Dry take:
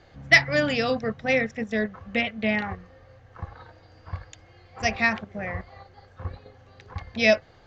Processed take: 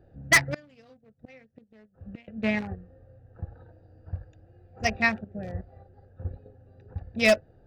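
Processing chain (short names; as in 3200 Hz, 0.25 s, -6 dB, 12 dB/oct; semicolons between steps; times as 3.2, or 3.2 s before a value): Wiener smoothing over 41 samples; 0.54–2.28 flipped gate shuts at -27 dBFS, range -28 dB; wavefolder -10.5 dBFS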